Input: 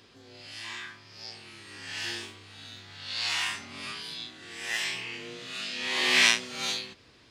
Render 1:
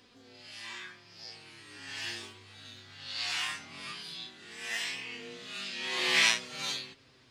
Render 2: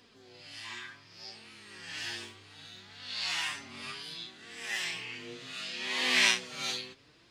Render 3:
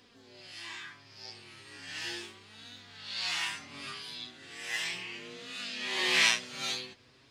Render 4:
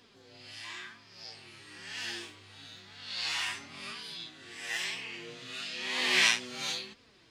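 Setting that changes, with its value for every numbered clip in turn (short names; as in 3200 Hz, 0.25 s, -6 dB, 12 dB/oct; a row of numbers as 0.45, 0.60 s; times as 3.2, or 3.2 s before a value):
flange, rate: 0.2, 0.66, 0.36, 1 Hz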